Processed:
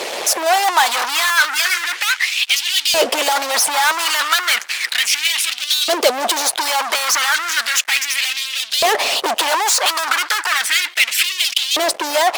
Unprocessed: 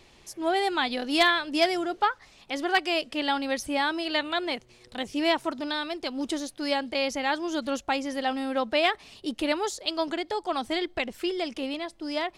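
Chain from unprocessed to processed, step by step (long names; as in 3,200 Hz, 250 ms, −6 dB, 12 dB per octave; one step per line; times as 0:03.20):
fuzz pedal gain 51 dB, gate −59 dBFS
harmonic and percussive parts rebalanced harmonic −8 dB
auto-filter high-pass saw up 0.34 Hz 500–3,700 Hz
level +1 dB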